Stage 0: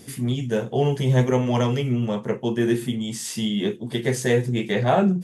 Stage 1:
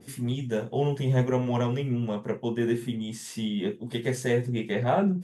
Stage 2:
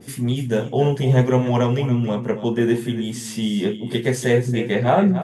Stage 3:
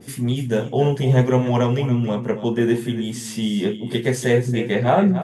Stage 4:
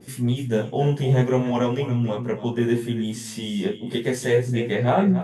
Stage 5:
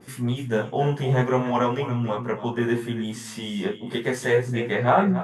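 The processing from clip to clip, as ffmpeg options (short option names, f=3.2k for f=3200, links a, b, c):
-af "adynamicequalizer=threshold=0.00891:dfrequency=2800:dqfactor=0.7:tfrequency=2800:tqfactor=0.7:attack=5:release=100:ratio=0.375:range=3:mode=cutabove:tftype=highshelf,volume=-5dB"
-af "aecho=1:1:282:0.251,volume=7.5dB"
-af anull
-af "flanger=delay=16:depth=5.1:speed=0.4"
-af "equalizer=f=1.2k:t=o:w=1.5:g=11,volume=-3.5dB"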